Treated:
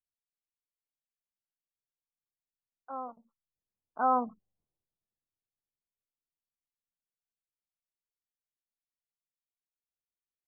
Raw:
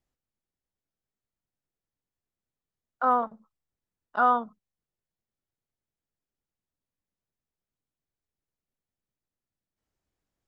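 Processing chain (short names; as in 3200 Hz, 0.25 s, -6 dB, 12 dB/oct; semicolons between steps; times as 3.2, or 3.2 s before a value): Doppler pass-by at 4.43, 15 m/s, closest 2.1 m; LPF 1100 Hz 24 dB/oct; spectral gate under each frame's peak -30 dB strong; gain +7 dB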